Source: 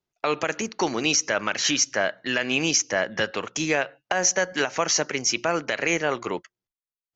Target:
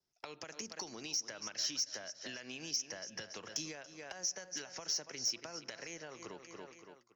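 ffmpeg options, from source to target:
-filter_complex "[0:a]bandreject=f=1.2k:w=27,aecho=1:1:282|564|846:0.188|0.064|0.0218,acompressor=threshold=-35dB:ratio=20,adynamicequalizer=threshold=0.00141:dfrequency=2400:dqfactor=4.7:tfrequency=2400:tqfactor=4.7:attack=5:release=100:ratio=0.375:range=2:mode=cutabove:tftype=bell,acrossover=split=150|3000[a][b][c];[b]acompressor=threshold=-42dB:ratio=2.5[d];[a][d][c]amix=inputs=3:normalize=0,equalizer=f=5.3k:t=o:w=0.37:g=14.5,asoftclip=type=tanh:threshold=-20.5dB,volume=-4.5dB"

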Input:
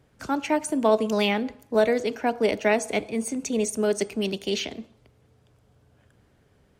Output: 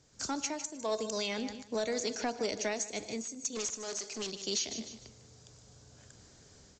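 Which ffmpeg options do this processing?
-filter_complex "[0:a]asplit=3[a][b][c];[a]afade=t=out:st=3.55:d=0.02[d];[b]asplit=2[e][f];[f]highpass=f=720:p=1,volume=25dB,asoftclip=type=tanh:threshold=-12.5dB[g];[e][g]amix=inputs=2:normalize=0,lowpass=f=5.5k:p=1,volume=-6dB,afade=t=in:st=3.55:d=0.02,afade=t=out:st=4.3:d=0.02[h];[c]afade=t=in:st=4.3:d=0.02[i];[d][h][i]amix=inputs=3:normalize=0,aemphasis=mode=production:type=50fm,aexciter=amount=4.1:drive=5.9:freq=4.1k,dynaudnorm=f=110:g=3:m=9dB,aecho=1:1:151|302|453:0.178|0.0533|0.016,acompressor=threshold=-24dB:ratio=2.5,asettb=1/sr,asplit=3[j][k][l];[j]atrim=end=0.764[m];[k]atrim=start=0.76:end=1.39,asetpts=PTS-STARTPTS,afade=t=in:d=0.004:c=qsin,afade=t=out:st=0.626:d=0.004:c=qsin,aecho=1:1:1.9:0.44,atrim=end_sample=27783[n];[l]atrim=start=1.386[o];[m][n]acrossfade=d=0.004:c1=hsin:c2=qsin[p];[p][o]acrossfade=d=0.004:c1=qsin:c2=hsin,asoftclip=type=tanh:threshold=-16dB,volume=-7.5dB" -ar 16000 -c:a pcm_mulaw

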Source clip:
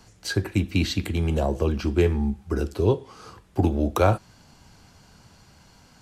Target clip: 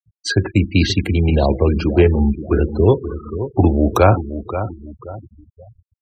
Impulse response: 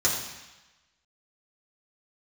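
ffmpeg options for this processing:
-af "acontrast=49,aecho=1:1:529|1058|1587|2116:0.282|0.107|0.0407|0.0155,afftfilt=real='re*gte(hypot(re,im),0.0501)':imag='im*gte(hypot(re,im),0.0501)':win_size=1024:overlap=0.75,volume=2.5dB"

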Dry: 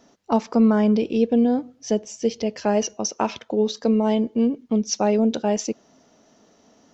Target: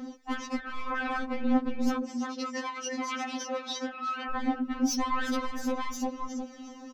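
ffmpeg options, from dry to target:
-filter_complex "[0:a]aecho=1:1:355|710|1065:0.501|0.11|0.0243,acompressor=threshold=-22dB:ratio=6,asoftclip=type=tanh:threshold=-28.5dB,aphaser=in_gain=1:out_gain=1:delay=1.2:decay=0.53:speed=0.95:type=triangular,highshelf=f=2k:g=-10.5,aeval=exprs='0.0841*sin(PI/2*3.16*val(0)/0.0841)':c=same,asettb=1/sr,asplit=3[a][b][c];[a]atrim=end=2.004[d];[b]atrim=start=2:end=4.31,asetpts=PTS-STARTPTS,afade=t=in:d=0.004:c=qsin,afade=t=out:st=2.306:d=0.004:c=qsin,highpass=130,lowpass=5.7k[e];[c]atrim=start=4.306[f];[d][e]acrossfade=d=0.004:c1=hsin:c2=qsin[g];[g][f]acrossfade=d=0.004:c1=qsin:c2=hsin,alimiter=limit=-23dB:level=0:latency=1:release=21,afftfilt=real='re*3.46*eq(mod(b,12),0)':imag='im*3.46*eq(mod(b,12),0)':win_size=2048:overlap=0.75"

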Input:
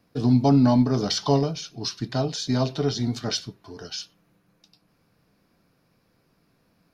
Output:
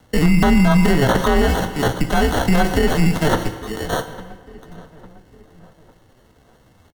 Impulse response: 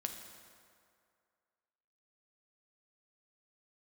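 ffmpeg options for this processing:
-filter_complex "[0:a]acrusher=samples=23:mix=1:aa=0.000001,afreqshift=-110,asetrate=58866,aresample=44100,atempo=0.749154,asplit=2[a][b];[b]adelay=852,lowpass=f=1.8k:p=1,volume=-20.5dB,asplit=2[c][d];[d]adelay=852,lowpass=f=1.8k:p=1,volume=0.46,asplit=2[e][f];[f]adelay=852,lowpass=f=1.8k:p=1,volume=0.46[g];[a][c][e][g]amix=inputs=4:normalize=0,asplit=2[h][i];[1:a]atrim=start_sample=2205,asetrate=66150,aresample=44100[j];[i][j]afir=irnorm=-1:irlink=0,volume=3.5dB[k];[h][k]amix=inputs=2:normalize=0,acrossover=split=2900[l][m];[m]acompressor=threshold=-33dB:ratio=4:attack=1:release=60[n];[l][n]amix=inputs=2:normalize=0,alimiter=level_in=12.5dB:limit=-1dB:release=50:level=0:latency=1,volume=-5dB"

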